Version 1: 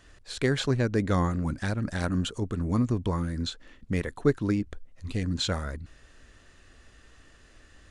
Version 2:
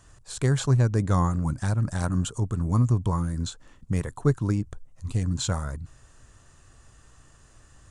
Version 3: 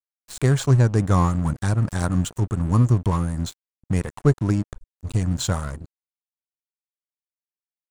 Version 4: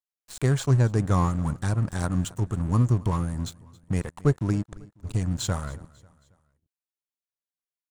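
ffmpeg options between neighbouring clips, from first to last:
ffmpeg -i in.wav -af "equalizer=frequency=125:width_type=o:width=1:gain=9,equalizer=frequency=250:width_type=o:width=1:gain=-4,equalizer=frequency=500:width_type=o:width=1:gain=-3,equalizer=frequency=1000:width_type=o:width=1:gain=6,equalizer=frequency=2000:width_type=o:width=1:gain=-7,equalizer=frequency=4000:width_type=o:width=1:gain=-5,equalizer=frequency=8000:width_type=o:width=1:gain=9" out.wav
ffmpeg -i in.wav -af "aeval=exprs='sgn(val(0))*max(abs(val(0))-0.0112,0)':channel_layout=same,volume=5dB" out.wav
ffmpeg -i in.wav -af "aecho=1:1:272|544|816:0.075|0.0345|0.0159,volume=-4dB" out.wav

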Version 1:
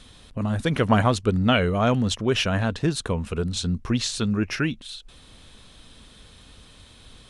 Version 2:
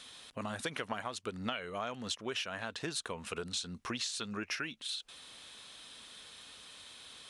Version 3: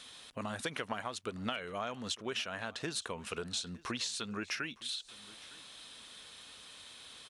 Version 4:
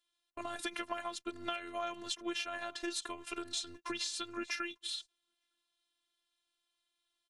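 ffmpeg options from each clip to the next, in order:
ffmpeg -i in.wav -af "highpass=frequency=1100:poles=1,acompressor=threshold=-35dB:ratio=12,volume=1dB" out.wav
ffmpeg -i in.wav -af "aecho=1:1:910:0.0841" out.wav
ffmpeg -i in.wav -af "agate=range=-31dB:threshold=-45dB:ratio=16:detection=peak,afftfilt=real='hypot(re,im)*cos(PI*b)':imag='0':win_size=512:overlap=0.75,volume=2.5dB" out.wav

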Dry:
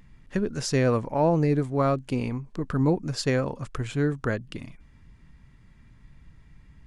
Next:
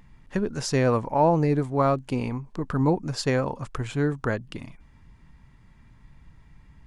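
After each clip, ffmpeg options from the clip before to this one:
ffmpeg -i in.wav -af "equalizer=frequency=890:width_type=o:width=0.71:gain=6" out.wav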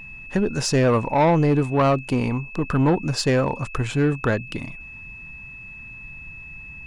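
ffmpeg -i in.wav -af "aeval=exprs='val(0)+0.00631*sin(2*PI*2600*n/s)':channel_layout=same,asoftclip=type=tanh:threshold=-18.5dB,volume=6.5dB" out.wav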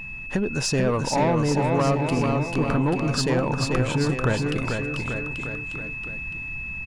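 ffmpeg -i in.wav -af "acompressor=threshold=-28dB:ratio=2.5,aecho=1:1:440|836|1192|1513|1802:0.631|0.398|0.251|0.158|0.1,volume=3.5dB" out.wav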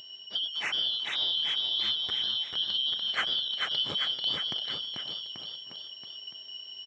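ffmpeg -i in.wav -af "afftfilt=real='real(if(lt(b,272),68*(eq(floor(b/68),0)*2+eq(floor(b/68),1)*3+eq(floor(b/68),2)*0+eq(floor(b/68),3)*1)+mod(b,68),b),0)':imag='imag(if(lt(b,272),68*(eq(floor(b/68),0)*2+eq(floor(b/68),1)*3+eq(floor(b/68),2)*0+eq(floor(b/68),3)*1)+mod(b,68),b),0)':win_size=2048:overlap=0.75,highpass=110,lowpass=2100" out.wav

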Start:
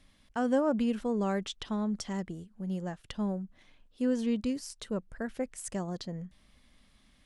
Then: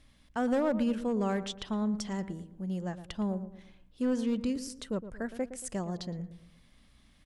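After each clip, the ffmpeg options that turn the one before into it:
ffmpeg -i in.wav -filter_complex "[0:a]asoftclip=type=hard:threshold=-23dB,aeval=exprs='val(0)+0.000501*(sin(2*PI*60*n/s)+sin(2*PI*2*60*n/s)/2+sin(2*PI*3*60*n/s)/3+sin(2*PI*4*60*n/s)/4+sin(2*PI*5*60*n/s)/5)':channel_layout=same,asplit=2[link_01][link_02];[link_02]adelay=114,lowpass=frequency=1200:poles=1,volume=-11.5dB,asplit=2[link_03][link_04];[link_04]adelay=114,lowpass=frequency=1200:poles=1,volume=0.44,asplit=2[link_05][link_06];[link_06]adelay=114,lowpass=frequency=1200:poles=1,volume=0.44,asplit=2[link_07][link_08];[link_08]adelay=114,lowpass=frequency=1200:poles=1,volume=0.44[link_09];[link_01][link_03][link_05][link_07][link_09]amix=inputs=5:normalize=0" out.wav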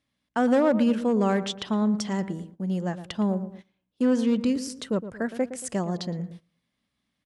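ffmpeg -i in.wav -af "agate=range=-20dB:threshold=-48dB:ratio=16:detection=peak,highpass=120,highshelf=frequency=10000:gain=-6.5,volume=7.5dB" out.wav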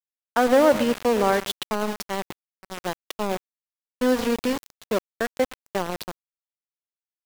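ffmpeg -i in.wav -filter_complex "[0:a]acrossover=split=290 5600:gain=0.112 1 0.126[link_01][link_02][link_03];[link_01][link_02][link_03]amix=inputs=3:normalize=0,aeval=exprs='val(0)*gte(abs(val(0)),0.0316)':channel_layout=same,agate=range=-9dB:threshold=-44dB:ratio=16:detection=peak,volume=6dB" out.wav

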